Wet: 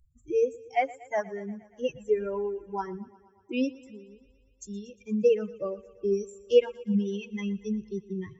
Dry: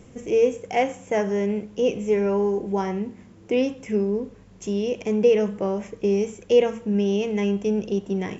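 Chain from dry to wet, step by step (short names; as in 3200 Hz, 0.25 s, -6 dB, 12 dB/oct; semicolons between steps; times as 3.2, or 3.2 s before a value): per-bin expansion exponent 3; 3.84–4.25 compressor 2:1, threshold -57 dBFS, peak gain reduction 17 dB; thinning echo 0.118 s, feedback 69%, high-pass 160 Hz, level -20.5 dB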